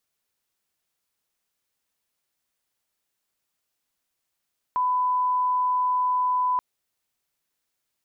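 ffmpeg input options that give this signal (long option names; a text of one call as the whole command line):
ffmpeg -f lavfi -i "sine=frequency=1000:duration=1.83:sample_rate=44100,volume=-1.94dB" out.wav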